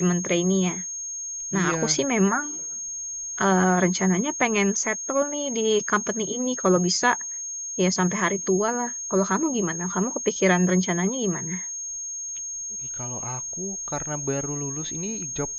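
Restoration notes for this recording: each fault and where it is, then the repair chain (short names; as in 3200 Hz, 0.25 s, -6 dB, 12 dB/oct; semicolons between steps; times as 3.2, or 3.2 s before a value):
tone 6500 Hz -30 dBFS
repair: notch 6500 Hz, Q 30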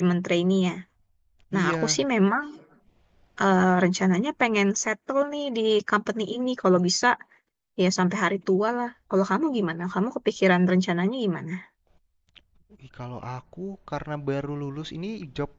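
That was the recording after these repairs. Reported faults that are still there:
none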